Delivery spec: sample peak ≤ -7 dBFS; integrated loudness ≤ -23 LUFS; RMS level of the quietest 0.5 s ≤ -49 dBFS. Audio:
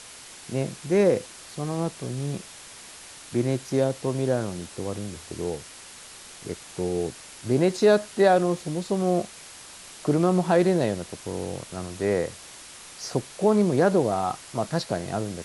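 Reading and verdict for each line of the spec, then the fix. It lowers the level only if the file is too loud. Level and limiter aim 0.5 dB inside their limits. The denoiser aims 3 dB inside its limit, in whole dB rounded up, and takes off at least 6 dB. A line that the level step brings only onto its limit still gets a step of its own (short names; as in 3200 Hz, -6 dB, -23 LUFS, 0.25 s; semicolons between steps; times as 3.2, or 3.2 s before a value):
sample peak -7.5 dBFS: OK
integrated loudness -25.5 LUFS: OK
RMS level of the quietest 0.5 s -45 dBFS: fail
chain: denoiser 7 dB, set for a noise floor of -45 dBFS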